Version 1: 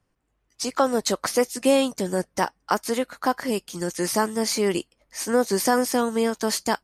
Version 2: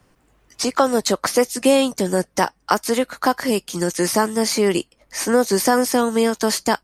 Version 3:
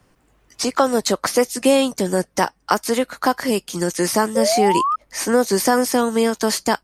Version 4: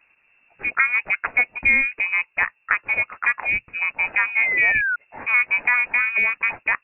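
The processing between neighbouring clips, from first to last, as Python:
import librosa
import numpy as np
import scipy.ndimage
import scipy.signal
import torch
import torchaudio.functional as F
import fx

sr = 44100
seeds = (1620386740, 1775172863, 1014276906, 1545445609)

y1 = fx.band_squash(x, sr, depth_pct=40)
y1 = F.gain(torch.from_numpy(y1), 4.5).numpy()
y2 = fx.spec_paint(y1, sr, seeds[0], shape='rise', start_s=4.35, length_s=0.61, low_hz=510.0, high_hz=1300.0, level_db=-19.0)
y3 = fx.freq_invert(y2, sr, carrier_hz=2700)
y3 = F.gain(torch.from_numpy(y3), -2.5).numpy()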